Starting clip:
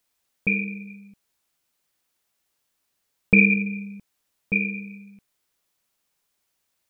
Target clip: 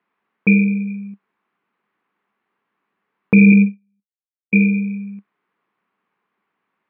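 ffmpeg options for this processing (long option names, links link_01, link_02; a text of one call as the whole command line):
ffmpeg -i in.wav -filter_complex "[0:a]asettb=1/sr,asplit=3[link_01][link_02][link_03];[link_01]atrim=end=3.524[link_04];[link_02]atrim=start=3.52:end=4.57,asetpts=PTS-STARTPTS,afade=type=in:duration=0.004:curve=qsin,afade=type=out:start_time=1.046:duration=0.004:curve=qsin,agate=range=-45dB:threshold=-25dB:ratio=16:detection=peak[link_05];[link_03]atrim=start=4.566[link_06];[link_04][link_05]acrossfade=duration=0.004:curve1=hsin:curve2=qsin[link_07];[link_07][link_06]acrossfade=duration=0.004:curve1=qsin:curve2=hsin,highpass=200,equalizer=frequency=200:width_type=q:width=4:gain=10,equalizer=frequency=400:width_type=q:width=4:gain=4,equalizer=frequency=590:width_type=q:width=4:gain=-7,equalizer=frequency=1100:width_type=q:width=4:gain=6,lowpass=frequency=2200:width=0.5412,lowpass=frequency=2200:width=1.3066,alimiter=level_in=9.5dB:limit=-1dB:release=50:level=0:latency=1,volume=-1dB" out.wav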